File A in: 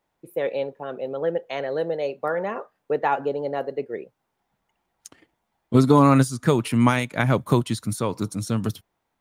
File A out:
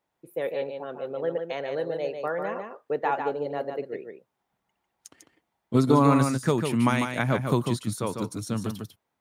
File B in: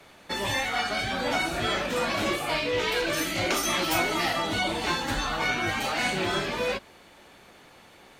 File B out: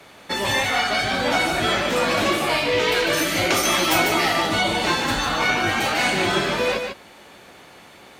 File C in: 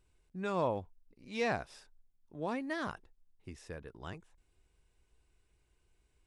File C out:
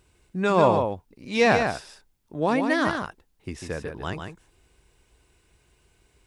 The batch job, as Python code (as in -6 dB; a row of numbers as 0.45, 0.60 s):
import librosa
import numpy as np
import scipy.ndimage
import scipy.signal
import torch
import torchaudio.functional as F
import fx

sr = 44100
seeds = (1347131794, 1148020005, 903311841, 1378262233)

p1 = fx.highpass(x, sr, hz=72.0, slope=6)
p2 = p1 + fx.echo_single(p1, sr, ms=148, db=-6.0, dry=0)
y = librosa.util.normalize(p2) * 10.0 ** (-6 / 20.0)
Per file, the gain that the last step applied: -4.0, +6.0, +13.5 dB